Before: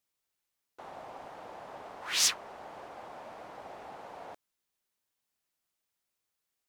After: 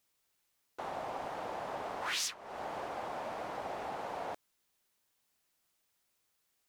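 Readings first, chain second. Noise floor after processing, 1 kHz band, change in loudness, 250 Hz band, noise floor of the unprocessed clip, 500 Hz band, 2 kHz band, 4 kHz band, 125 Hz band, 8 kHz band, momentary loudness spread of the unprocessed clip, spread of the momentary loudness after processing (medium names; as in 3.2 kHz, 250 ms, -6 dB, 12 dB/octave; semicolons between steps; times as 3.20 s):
-79 dBFS, +5.5 dB, -11.0 dB, +5.5 dB, -85 dBFS, +5.5 dB, -1.0 dB, -7.5 dB, +5.5 dB, -10.0 dB, 20 LU, 9 LU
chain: compression 8:1, threshold -40 dBFS, peak gain reduction 18.5 dB; trim +6.5 dB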